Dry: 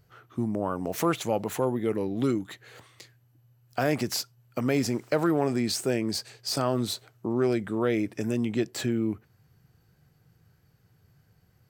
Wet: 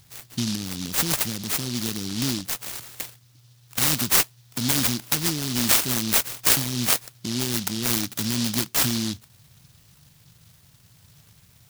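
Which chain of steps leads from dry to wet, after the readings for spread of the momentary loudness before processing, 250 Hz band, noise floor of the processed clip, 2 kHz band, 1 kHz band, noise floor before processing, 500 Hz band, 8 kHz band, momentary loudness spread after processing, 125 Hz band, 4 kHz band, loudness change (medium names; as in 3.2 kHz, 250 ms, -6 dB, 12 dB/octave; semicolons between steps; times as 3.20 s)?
7 LU, -1.0 dB, -56 dBFS, +7.0 dB, 0.0 dB, -65 dBFS, -9.0 dB, +14.0 dB, 12 LU, +2.5 dB, +10.5 dB, +5.5 dB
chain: in parallel at +1 dB: compression, threshold -34 dBFS, peak gain reduction 14 dB; on the sum: FFT filter 240 Hz 0 dB, 970 Hz -30 dB, 1.6 kHz +14 dB, 2.4 kHz +10 dB; delay time shaken by noise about 4.4 kHz, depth 0.37 ms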